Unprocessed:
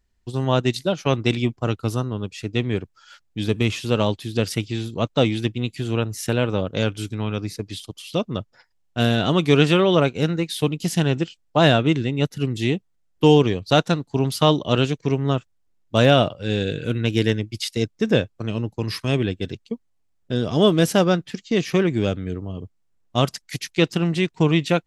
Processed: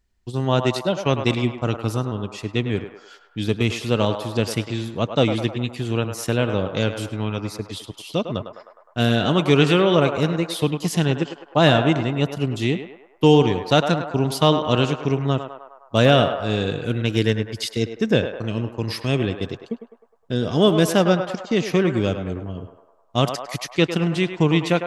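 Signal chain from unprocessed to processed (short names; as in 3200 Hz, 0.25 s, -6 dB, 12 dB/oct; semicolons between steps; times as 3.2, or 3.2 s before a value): narrowing echo 0.103 s, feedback 68%, band-pass 950 Hz, level -6 dB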